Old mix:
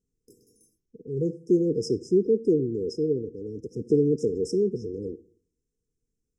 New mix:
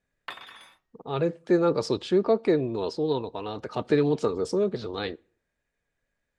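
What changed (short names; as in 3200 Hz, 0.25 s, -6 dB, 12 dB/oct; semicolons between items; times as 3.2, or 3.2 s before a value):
speech: send -11.0 dB; master: remove brick-wall FIR band-stop 500–5000 Hz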